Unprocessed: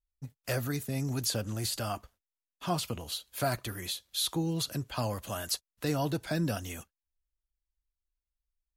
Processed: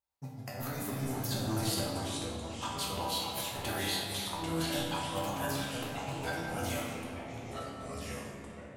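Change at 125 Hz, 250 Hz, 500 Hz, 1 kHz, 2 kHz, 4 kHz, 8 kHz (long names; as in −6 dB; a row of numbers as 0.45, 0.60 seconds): −3.5, −1.5, −1.0, +2.0, +2.0, −0.5, −2.0 decibels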